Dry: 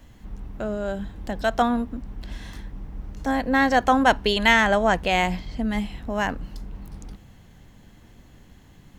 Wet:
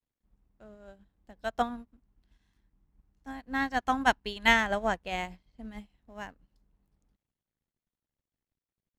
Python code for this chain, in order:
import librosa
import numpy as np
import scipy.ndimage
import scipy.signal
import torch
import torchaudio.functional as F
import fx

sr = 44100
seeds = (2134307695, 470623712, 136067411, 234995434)

y = fx.peak_eq(x, sr, hz=540.0, db=-9.0, octaves=0.46, at=(1.69, 4.48))
y = np.sign(y) * np.maximum(np.abs(y) - 10.0 ** (-47.5 / 20.0), 0.0)
y = fx.upward_expand(y, sr, threshold_db=-34.0, expansion=2.5)
y = F.gain(torch.from_numpy(y), -3.5).numpy()